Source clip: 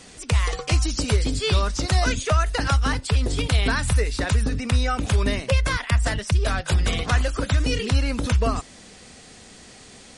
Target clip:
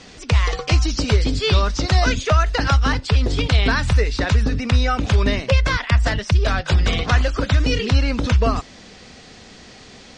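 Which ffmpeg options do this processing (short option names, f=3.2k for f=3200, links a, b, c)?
-af "lowpass=f=6k:w=0.5412,lowpass=f=6k:w=1.3066,volume=4dB"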